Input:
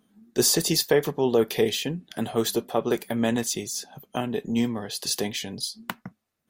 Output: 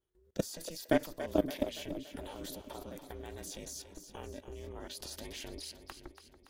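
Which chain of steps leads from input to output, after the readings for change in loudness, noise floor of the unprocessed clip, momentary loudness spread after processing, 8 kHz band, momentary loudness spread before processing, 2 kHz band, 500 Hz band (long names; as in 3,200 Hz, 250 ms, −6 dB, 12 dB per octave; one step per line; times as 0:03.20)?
−13.5 dB, −75 dBFS, 15 LU, −18.0 dB, 11 LU, −12.0 dB, −13.0 dB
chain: ring modulation 160 Hz
output level in coarse steps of 21 dB
echo with a time of its own for lows and highs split 370 Hz, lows 526 ms, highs 284 ms, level −10.5 dB
level −3 dB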